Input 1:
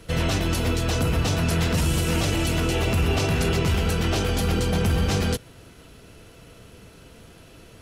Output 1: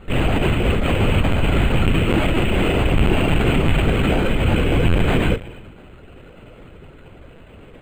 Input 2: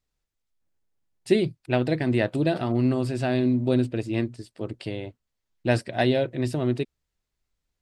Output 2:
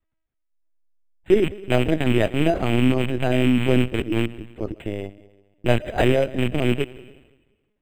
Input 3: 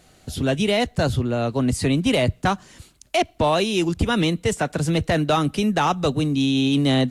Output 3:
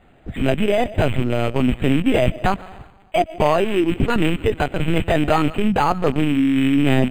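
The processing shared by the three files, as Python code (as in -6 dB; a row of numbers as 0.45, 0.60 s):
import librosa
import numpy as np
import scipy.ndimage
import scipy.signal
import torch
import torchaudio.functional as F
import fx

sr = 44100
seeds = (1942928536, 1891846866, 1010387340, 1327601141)

y = fx.rattle_buzz(x, sr, strikes_db=-25.0, level_db=-17.0)
y = fx.rev_freeverb(y, sr, rt60_s=1.2, hf_ratio=1.0, predelay_ms=85, drr_db=17.5)
y = fx.lpc_vocoder(y, sr, seeds[0], excitation='pitch_kept', order=16)
y = np.interp(np.arange(len(y)), np.arange(len(y))[::8], y[::8])
y = y * 10.0 ** (-2 / 20.0) / np.max(np.abs(y))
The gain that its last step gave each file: +6.0, +4.5, +3.0 dB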